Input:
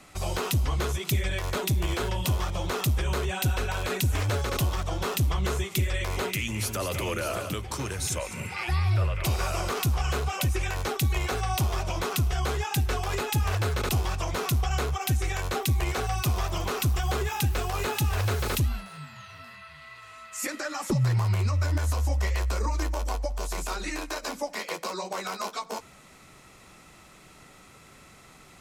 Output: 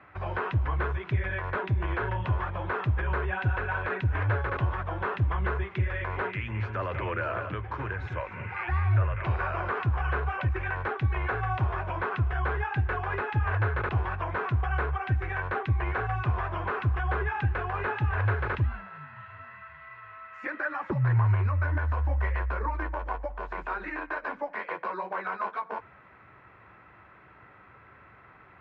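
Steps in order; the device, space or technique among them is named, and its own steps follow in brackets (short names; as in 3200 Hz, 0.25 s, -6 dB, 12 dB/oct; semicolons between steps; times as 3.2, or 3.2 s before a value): bass cabinet (speaker cabinet 66–2300 Hz, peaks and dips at 69 Hz +4 dB, 110 Hz +6 dB, 160 Hz -6 dB, 240 Hz -6 dB, 1000 Hz +6 dB, 1600 Hz +10 dB); gain -2.5 dB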